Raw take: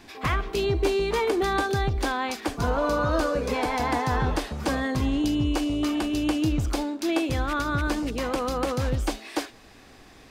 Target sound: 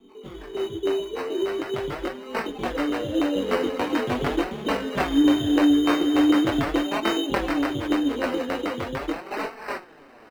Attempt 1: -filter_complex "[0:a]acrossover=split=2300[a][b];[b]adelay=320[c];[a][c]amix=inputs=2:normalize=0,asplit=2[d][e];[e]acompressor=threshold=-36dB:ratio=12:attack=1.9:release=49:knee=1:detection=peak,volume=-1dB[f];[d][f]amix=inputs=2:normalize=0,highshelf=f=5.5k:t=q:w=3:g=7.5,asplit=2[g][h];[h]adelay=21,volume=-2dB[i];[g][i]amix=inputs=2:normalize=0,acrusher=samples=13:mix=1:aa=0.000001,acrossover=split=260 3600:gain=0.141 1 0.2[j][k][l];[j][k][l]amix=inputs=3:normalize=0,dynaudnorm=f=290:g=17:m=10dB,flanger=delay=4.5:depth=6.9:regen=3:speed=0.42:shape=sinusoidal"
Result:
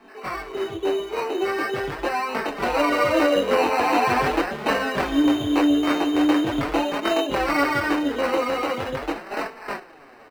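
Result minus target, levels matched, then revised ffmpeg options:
1000 Hz band +5.0 dB
-filter_complex "[0:a]acrossover=split=2300[a][b];[b]adelay=320[c];[a][c]amix=inputs=2:normalize=0,asplit=2[d][e];[e]acompressor=threshold=-36dB:ratio=12:attack=1.9:release=49:knee=1:detection=peak,volume=-1dB[f];[d][f]amix=inputs=2:normalize=0,asuperstop=centerf=1100:order=8:qfactor=0.52,highshelf=f=5.5k:t=q:w=3:g=7.5,asplit=2[g][h];[h]adelay=21,volume=-2dB[i];[g][i]amix=inputs=2:normalize=0,acrusher=samples=13:mix=1:aa=0.000001,acrossover=split=260 3600:gain=0.141 1 0.2[j][k][l];[j][k][l]amix=inputs=3:normalize=0,dynaudnorm=f=290:g=17:m=10dB,flanger=delay=4.5:depth=6.9:regen=3:speed=0.42:shape=sinusoidal"

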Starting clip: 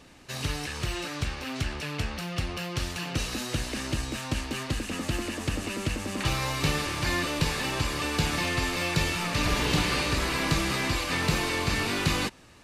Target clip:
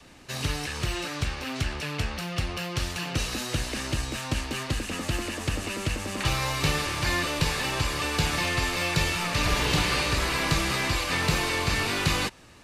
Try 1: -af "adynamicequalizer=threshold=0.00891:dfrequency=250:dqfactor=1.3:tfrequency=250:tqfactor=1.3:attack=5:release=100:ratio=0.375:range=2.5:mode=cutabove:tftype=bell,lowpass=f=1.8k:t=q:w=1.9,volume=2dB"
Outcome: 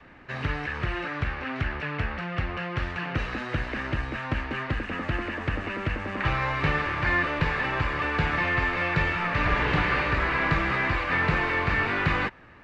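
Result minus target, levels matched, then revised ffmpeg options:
2000 Hz band +3.0 dB
-af "adynamicequalizer=threshold=0.00891:dfrequency=250:dqfactor=1.3:tfrequency=250:tqfactor=1.3:attack=5:release=100:ratio=0.375:range=2.5:mode=cutabove:tftype=bell,volume=2dB"

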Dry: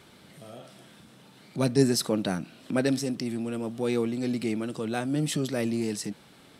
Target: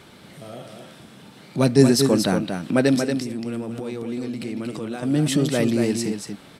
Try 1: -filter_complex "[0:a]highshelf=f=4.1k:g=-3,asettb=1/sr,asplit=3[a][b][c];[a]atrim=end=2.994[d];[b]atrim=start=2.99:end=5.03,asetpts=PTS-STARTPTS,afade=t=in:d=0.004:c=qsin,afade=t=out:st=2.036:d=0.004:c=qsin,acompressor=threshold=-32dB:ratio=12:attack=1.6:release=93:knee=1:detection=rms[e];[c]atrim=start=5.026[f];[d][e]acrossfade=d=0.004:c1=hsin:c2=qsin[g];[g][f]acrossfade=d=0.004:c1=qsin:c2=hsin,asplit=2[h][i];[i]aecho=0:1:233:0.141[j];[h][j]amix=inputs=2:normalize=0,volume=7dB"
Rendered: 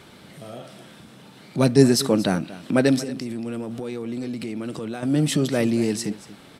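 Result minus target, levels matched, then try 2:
echo-to-direct -11 dB
-filter_complex "[0:a]highshelf=f=4.1k:g=-3,asettb=1/sr,asplit=3[a][b][c];[a]atrim=end=2.994[d];[b]atrim=start=2.99:end=5.03,asetpts=PTS-STARTPTS,afade=t=in:d=0.004:c=qsin,afade=t=out:st=2.036:d=0.004:c=qsin,acompressor=threshold=-32dB:ratio=12:attack=1.6:release=93:knee=1:detection=rms[e];[c]atrim=start=5.026[f];[d][e]acrossfade=d=0.004:c1=hsin:c2=qsin[g];[g][f]acrossfade=d=0.004:c1=qsin:c2=hsin,asplit=2[h][i];[i]aecho=0:1:233:0.501[j];[h][j]amix=inputs=2:normalize=0,volume=7dB"

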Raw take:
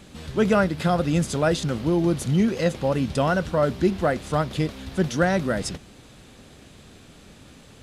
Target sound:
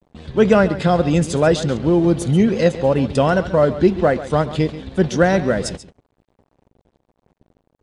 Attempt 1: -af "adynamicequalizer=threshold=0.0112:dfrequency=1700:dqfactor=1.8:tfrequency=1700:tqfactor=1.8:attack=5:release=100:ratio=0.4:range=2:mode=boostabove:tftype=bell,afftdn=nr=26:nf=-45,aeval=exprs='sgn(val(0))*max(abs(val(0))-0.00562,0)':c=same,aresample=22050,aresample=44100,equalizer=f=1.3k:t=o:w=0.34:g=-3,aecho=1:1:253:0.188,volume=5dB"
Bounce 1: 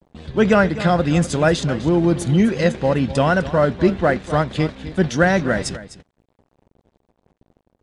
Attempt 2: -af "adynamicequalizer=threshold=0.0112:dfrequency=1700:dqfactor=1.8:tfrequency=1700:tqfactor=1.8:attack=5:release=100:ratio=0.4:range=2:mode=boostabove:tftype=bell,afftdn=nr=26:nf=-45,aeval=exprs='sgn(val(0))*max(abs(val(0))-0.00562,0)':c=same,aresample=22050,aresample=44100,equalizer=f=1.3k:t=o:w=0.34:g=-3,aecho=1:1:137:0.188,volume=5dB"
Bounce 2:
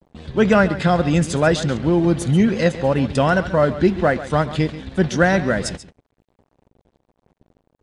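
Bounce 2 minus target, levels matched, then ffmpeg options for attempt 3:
2000 Hz band +4.0 dB
-af "adynamicequalizer=threshold=0.0112:dfrequency=450:dqfactor=1.8:tfrequency=450:tqfactor=1.8:attack=5:release=100:ratio=0.4:range=2:mode=boostabove:tftype=bell,afftdn=nr=26:nf=-45,aeval=exprs='sgn(val(0))*max(abs(val(0))-0.00562,0)':c=same,aresample=22050,aresample=44100,equalizer=f=1.3k:t=o:w=0.34:g=-3,aecho=1:1:137:0.188,volume=5dB"

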